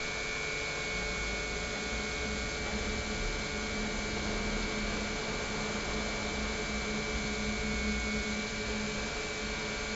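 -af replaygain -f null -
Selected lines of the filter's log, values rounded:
track_gain = +17.8 dB
track_peak = 0.065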